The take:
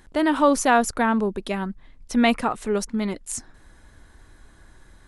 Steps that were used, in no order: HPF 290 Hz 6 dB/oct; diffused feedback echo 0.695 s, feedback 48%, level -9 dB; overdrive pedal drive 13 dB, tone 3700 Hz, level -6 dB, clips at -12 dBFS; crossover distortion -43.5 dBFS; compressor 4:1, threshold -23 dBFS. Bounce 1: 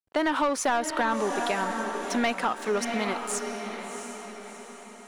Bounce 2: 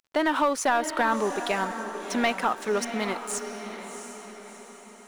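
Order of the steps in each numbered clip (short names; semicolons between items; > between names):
crossover distortion > HPF > overdrive pedal > diffused feedback echo > compressor; HPF > compressor > overdrive pedal > crossover distortion > diffused feedback echo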